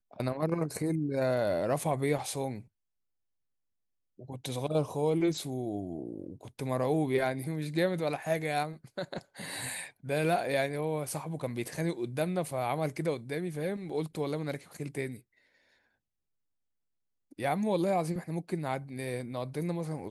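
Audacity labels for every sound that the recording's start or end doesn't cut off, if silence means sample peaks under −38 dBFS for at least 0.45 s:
4.190000	15.160000	sound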